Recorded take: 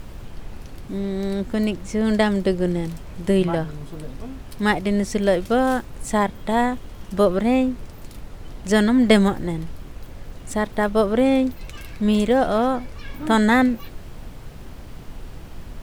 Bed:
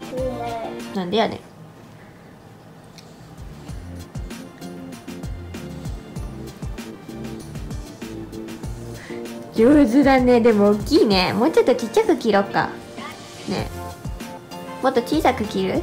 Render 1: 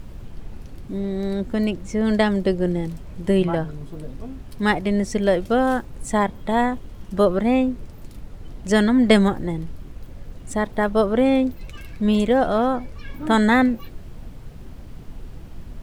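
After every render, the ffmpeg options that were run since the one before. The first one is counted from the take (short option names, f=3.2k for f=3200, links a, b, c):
-af "afftdn=nr=6:nf=-39"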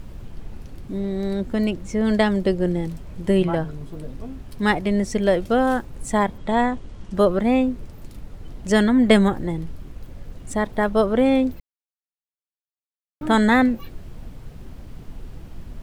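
-filter_complex "[0:a]asettb=1/sr,asplit=3[a][b][c];[a]atrim=end=6.384[d];[b]atrim=start=6.38:end=7.15,asetpts=PTS-STARTPTS,afade=t=in:d=0.004:c=qsin,afade=t=out:st=0.766:d=0.004:c=qsin,lowpass=f=8.7k:w=0.5412,lowpass=f=8.7k:w=1.3066[e];[c]atrim=start=7.146[f];[d][e]acrossfade=d=0.004:c1=hsin:c2=qsin[g];[g][f]acrossfade=d=0.004:c1=qsin:c2=hsin,asettb=1/sr,asplit=3[h][i][j];[h]atrim=end=8.834[k];[i]atrim=start=8.83:end=9.33,asetpts=PTS-STARTPTS,afade=t=in:d=0.004:c=qsin,afade=t=out:st=0.496:d=0.004:c=qsin,equalizer=f=5k:w=3:g=-6[l];[j]atrim=start=9.326[m];[k][l]acrossfade=d=0.004:c1=hsin:c2=qsin[n];[n][m]acrossfade=d=0.004:c1=qsin:c2=hsin,asplit=3[o][p][q];[o]atrim=end=11.6,asetpts=PTS-STARTPTS,afade=t=out:st=11.596:d=0.004:c=hsin[r];[p]atrim=start=11.6:end=13.21,asetpts=PTS-STARTPTS,volume=0[s];[q]atrim=start=13.21,asetpts=PTS-STARTPTS,afade=t=in:d=0.004:c=hsin[t];[r][s][t]concat=n=3:v=0:a=1"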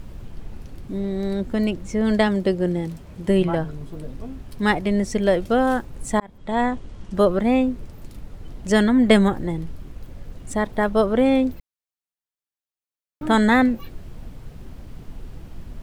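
-filter_complex "[0:a]asettb=1/sr,asplit=3[a][b][c];[a]atrim=end=2.274[d];[b]atrim=start=2.27:end=3.28,asetpts=PTS-STARTPTS,afade=t=in:d=0.004:c=qsin,afade=t=out:st=1.006:d=0.004:c=qsin,highpass=f=70:p=1[e];[c]atrim=start=3.276[f];[d][e]acrossfade=d=0.004:c1=hsin:c2=qsin[g];[g][f]acrossfade=d=0.004:c1=qsin:c2=hsin,asplit=2[h][i];[h]atrim=end=6.2,asetpts=PTS-STARTPTS,afade=t=out:st=6.196:d=0.004:c=hsin[j];[i]atrim=start=6.2,asetpts=PTS-STARTPTS,afade=t=in:d=0.48[k];[j][k]concat=n=2:v=0:a=1"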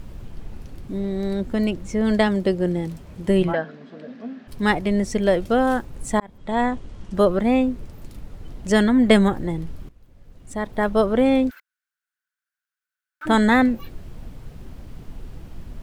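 -filter_complex "[0:a]asplit=3[a][b][c];[a]afade=t=out:st=3.52:d=0.02[d];[b]highpass=f=220:w=0.5412,highpass=f=220:w=1.3066,equalizer=f=230:t=q:w=4:g=10,equalizer=f=340:t=q:w=4:g=-9,equalizer=f=630:t=q:w=4:g=4,equalizer=f=940:t=q:w=4:g=-4,equalizer=f=1.7k:t=q:w=4:g=9,lowpass=f=4.9k:w=0.5412,lowpass=f=4.9k:w=1.3066,afade=t=in:st=3.52:d=0.02,afade=t=out:st=4.47:d=0.02[e];[c]afade=t=in:st=4.47:d=0.02[f];[d][e][f]amix=inputs=3:normalize=0,asplit=3[g][h][i];[g]afade=t=out:st=11.49:d=0.02[j];[h]highpass=f=1.5k:t=q:w=12,afade=t=in:st=11.49:d=0.02,afade=t=out:st=13.25:d=0.02[k];[i]afade=t=in:st=13.25:d=0.02[l];[j][k][l]amix=inputs=3:normalize=0,asplit=2[m][n];[m]atrim=end=9.89,asetpts=PTS-STARTPTS,afade=t=out:st=9.886:d=0.004:c=hsin:silence=0.16788[o];[n]atrim=start=9.89,asetpts=PTS-STARTPTS,afade=t=in:d=0.98:c=qua:silence=0.16788[p];[o][p]concat=n=2:v=0:a=1"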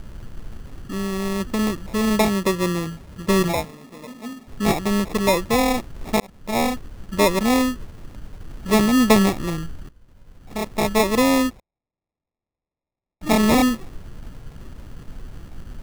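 -af "acrusher=samples=29:mix=1:aa=0.000001"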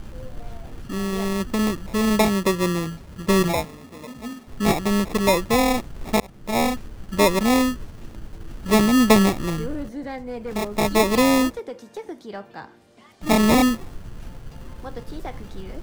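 -filter_complex "[1:a]volume=-18dB[a];[0:a][a]amix=inputs=2:normalize=0"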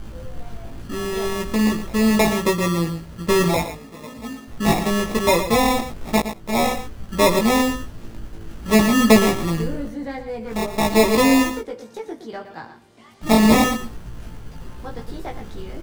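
-filter_complex "[0:a]asplit=2[a][b];[b]adelay=18,volume=-3dB[c];[a][c]amix=inputs=2:normalize=0,asplit=2[d][e];[e]aecho=0:1:116:0.299[f];[d][f]amix=inputs=2:normalize=0"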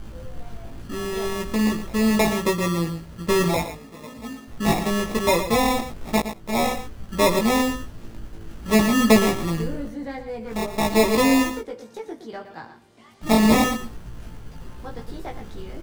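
-af "volume=-2.5dB"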